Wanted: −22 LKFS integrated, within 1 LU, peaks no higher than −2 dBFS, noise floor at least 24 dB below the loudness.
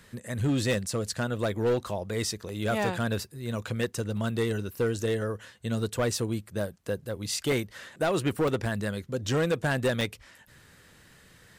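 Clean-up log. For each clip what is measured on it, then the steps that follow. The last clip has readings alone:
share of clipped samples 1.2%; peaks flattened at −20.5 dBFS; number of dropouts 7; longest dropout 1.5 ms; integrated loudness −29.5 LKFS; sample peak −20.5 dBFS; target loudness −22.0 LKFS
→ clipped peaks rebuilt −20.5 dBFS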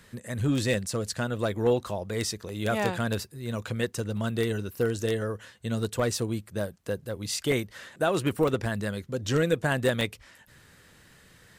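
share of clipped samples 0.0%; number of dropouts 7; longest dropout 1.5 ms
→ repair the gap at 0:00.74/0:02.49/0:04.17/0:06.12/0:07.52/0:08.48/0:10.01, 1.5 ms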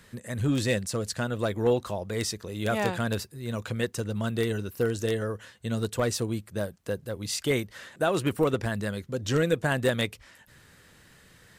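number of dropouts 0; integrated loudness −29.0 LKFS; sample peak −11.5 dBFS; target loudness −22.0 LKFS
→ level +7 dB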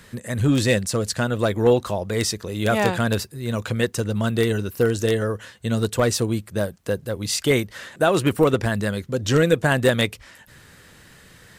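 integrated loudness −22.0 LKFS; sample peak −4.5 dBFS; background noise floor −50 dBFS

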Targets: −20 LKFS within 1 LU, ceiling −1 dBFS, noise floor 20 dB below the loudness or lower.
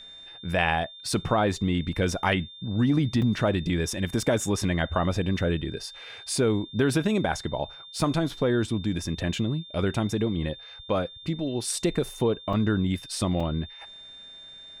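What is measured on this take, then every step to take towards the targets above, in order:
number of dropouts 3; longest dropout 3.7 ms; interfering tone 3,600 Hz; level of the tone −43 dBFS; integrated loudness −27.0 LKFS; sample peak −8.5 dBFS; target loudness −20.0 LKFS
→ repair the gap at 0:03.22/0:12.53/0:13.40, 3.7 ms
notch filter 3,600 Hz, Q 30
level +7 dB

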